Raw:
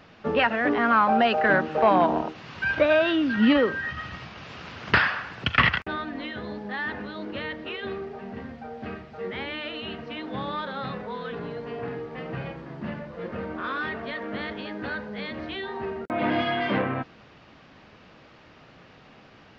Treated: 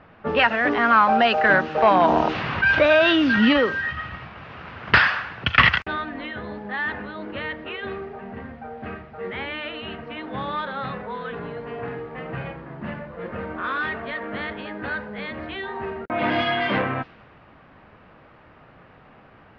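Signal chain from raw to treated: low-pass opened by the level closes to 1500 Hz, open at -17 dBFS; bell 270 Hz -5.5 dB 2.7 oct; 2.04–3.49 fast leveller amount 50%; gain +5.5 dB

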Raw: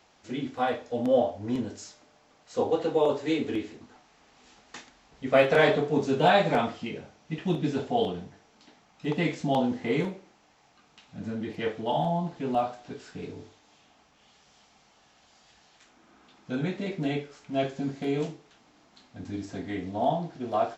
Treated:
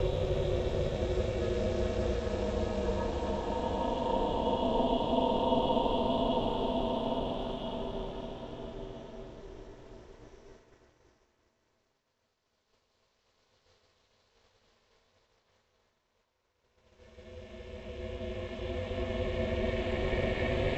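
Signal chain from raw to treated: Paulstretch 13×, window 0.50 s, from 7.57; ring modulator 210 Hz; expander -51 dBFS

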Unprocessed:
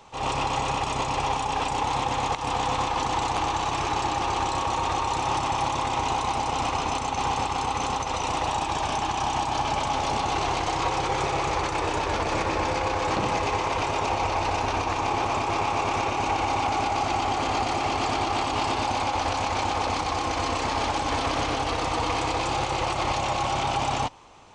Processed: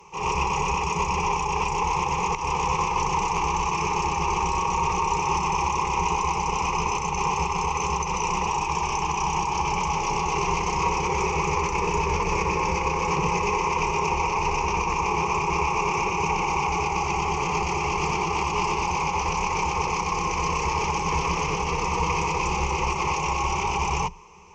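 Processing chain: octaver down 1 oct, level 0 dB; ripple EQ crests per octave 0.78, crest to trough 18 dB; gain -3.5 dB

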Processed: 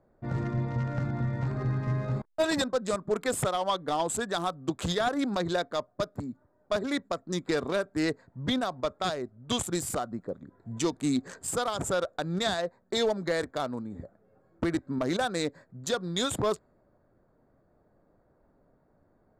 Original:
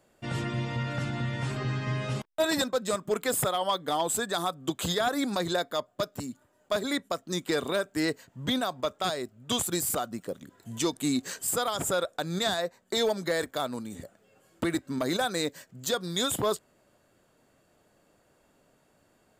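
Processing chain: Wiener smoothing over 15 samples; LPF 8700 Hz 12 dB/oct; low shelf 68 Hz +10 dB; mismatched tape noise reduction decoder only

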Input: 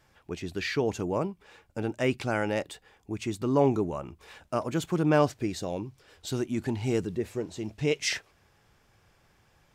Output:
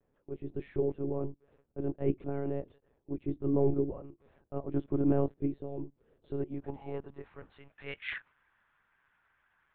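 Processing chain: dynamic EQ 200 Hz, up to +5 dB, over -39 dBFS, Q 1.9; band-pass sweep 340 Hz -> 1500 Hz, 6.21–7.53; monotone LPC vocoder at 8 kHz 140 Hz

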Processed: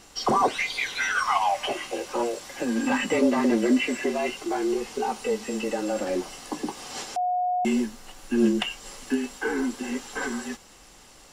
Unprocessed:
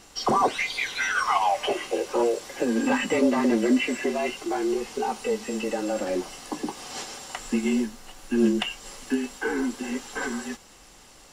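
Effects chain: 1.18–2.95 bell 430 Hz -8 dB 0.58 oct; 7.16–7.65 bleep 724 Hz -22 dBFS

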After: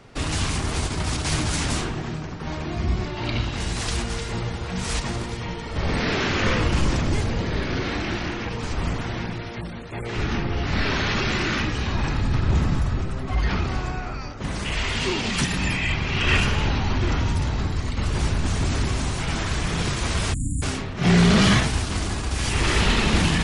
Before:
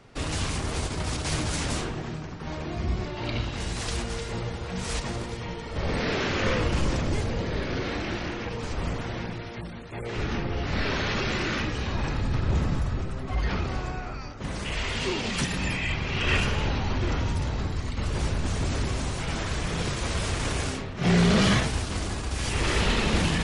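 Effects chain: spectral delete 20.33–20.63, 310–6800 Hz; dynamic EQ 520 Hz, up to -5 dB, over -44 dBFS, Q 2.4; gain +4.5 dB

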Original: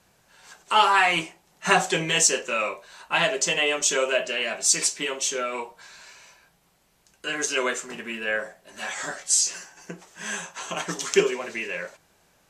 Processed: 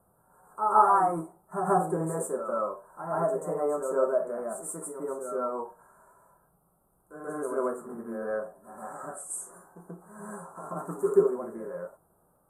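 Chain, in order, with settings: Chebyshev band-stop 1300–9100 Hz, order 4; harmonic-percussive split percussive -7 dB; reverse echo 0.134 s -7 dB

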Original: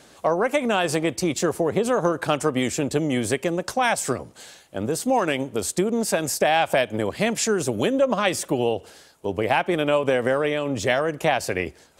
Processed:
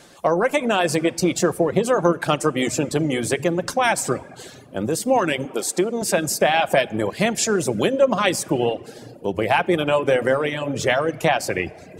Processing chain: reverb RT60 1.9 s, pre-delay 6 ms, DRR 7.5 dB; reverb removal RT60 0.71 s; 5.45–6.02 HPF 270 Hz 12 dB/oct; gain +2.5 dB

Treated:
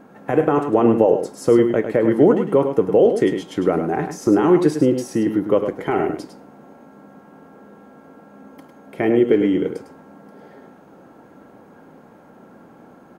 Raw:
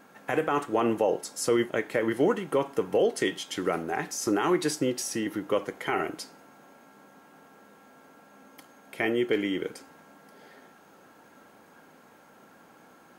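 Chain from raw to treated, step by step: tilt shelf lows +9 dB, about 1200 Hz; echo 0.103 s -8 dB; gain +3.5 dB

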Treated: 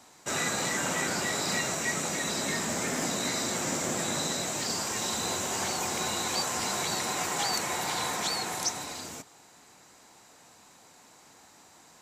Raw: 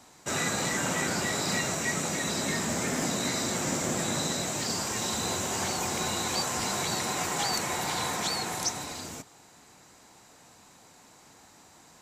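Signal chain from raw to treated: low shelf 200 Hz -6.5 dB

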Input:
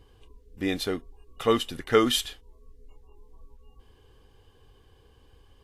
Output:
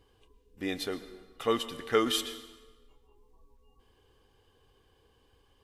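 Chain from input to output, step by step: low shelf 150 Hz -8 dB; reverb RT60 1.3 s, pre-delay 0.1 s, DRR 13 dB; gain -4.5 dB

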